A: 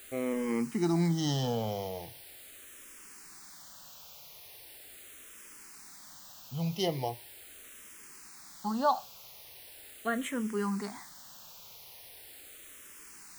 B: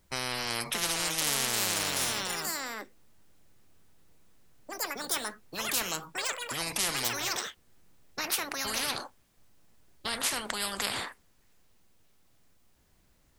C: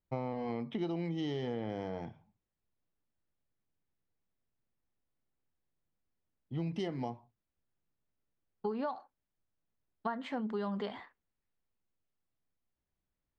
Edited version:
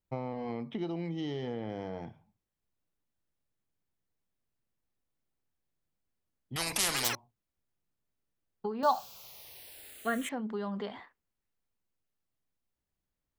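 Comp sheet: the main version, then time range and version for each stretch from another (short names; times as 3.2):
C
6.56–7.15 from B
8.83–10.29 from A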